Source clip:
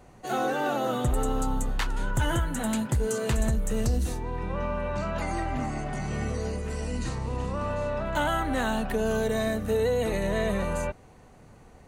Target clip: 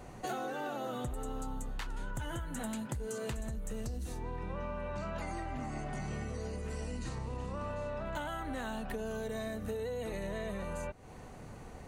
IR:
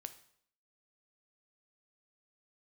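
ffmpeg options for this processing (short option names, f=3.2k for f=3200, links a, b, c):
-af "acompressor=threshold=-39dB:ratio=10,volume=3.5dB"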